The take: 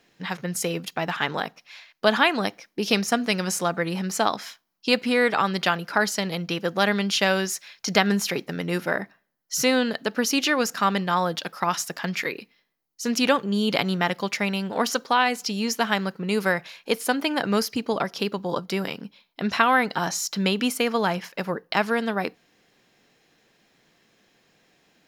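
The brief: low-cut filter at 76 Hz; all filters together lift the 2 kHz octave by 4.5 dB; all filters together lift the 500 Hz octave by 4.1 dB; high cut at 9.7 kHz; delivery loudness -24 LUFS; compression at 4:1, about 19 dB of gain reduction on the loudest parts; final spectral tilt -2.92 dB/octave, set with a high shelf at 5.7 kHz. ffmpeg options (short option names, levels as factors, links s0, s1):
-af "highpass=76,lowpass=9700,equalizer=f=500:t=o:g=4.5,equalizer=f=2000:t=o:g=4.5,highshelf=f=5700:g=8,acompressor=threshold=0.0178:ratio=4,volume=3.98"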